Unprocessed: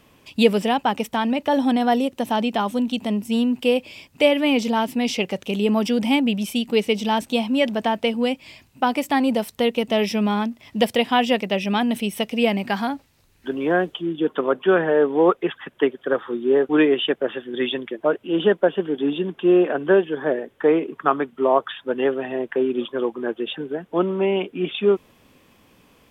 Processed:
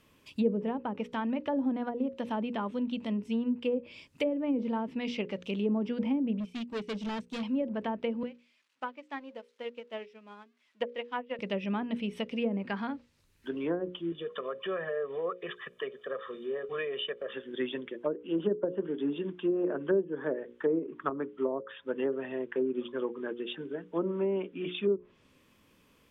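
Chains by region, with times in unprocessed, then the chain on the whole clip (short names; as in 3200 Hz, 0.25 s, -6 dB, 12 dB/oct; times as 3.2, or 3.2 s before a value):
6.4–7.43 low shelf 270 Hz +6 dB + hard clip -22 dBFS + upward expander 2.5:1, over -33 dBFS
8.23–11.39 switching spikes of -20 dBFS + BPF 370–2400 Hz + upward expander 2.5:1, over -30 dBFS
14.12–17.33 low shelf 150 Hz -10 dB + comb 1.7 ms, depth 96% + compressor 2.5:1, threshold -24 dBFS
whole clip: notches 60/120/180/240/300/360/420/480/540 Hz; treble ducked by the level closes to 480 Hz, closed at -14.5 dBFS; bell 750 Hz -10 dB 0.32 oct; gain -8.5 dB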